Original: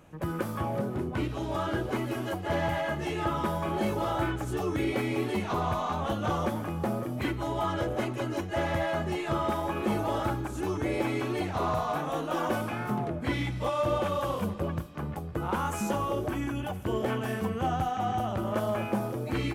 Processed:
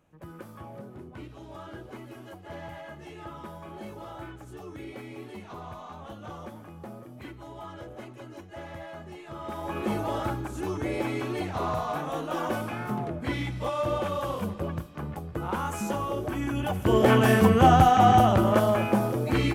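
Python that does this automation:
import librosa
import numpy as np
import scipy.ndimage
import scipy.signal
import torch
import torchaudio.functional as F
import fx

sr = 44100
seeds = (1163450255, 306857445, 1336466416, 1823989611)

y = fx.gain(x, sr, db=fx.line((9.32, -12.0), (9.76, -0.5), (16.26, -0.5), (17.2, 12.0), (18.18, 12.0), (18.78, 5.5)))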